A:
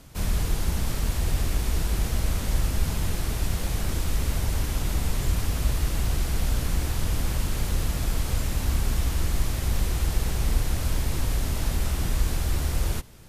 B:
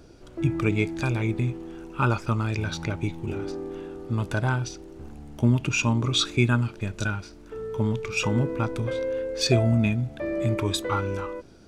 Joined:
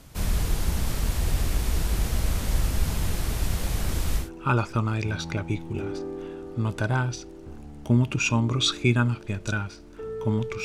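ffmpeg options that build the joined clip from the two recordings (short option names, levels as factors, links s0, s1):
-filter_complex "[0:a]apad=whole_dur=10.64,atrim=end=10.64,atrim=end=4.3,asetpts=PTS-STARTPTS[s0];[1:a]atrim=start=1.69:end=8.17,asetpts=PTS-STARTPTS[s1];[s0][s1]acrossfade=d=0.14:c1=tri:c2=tri"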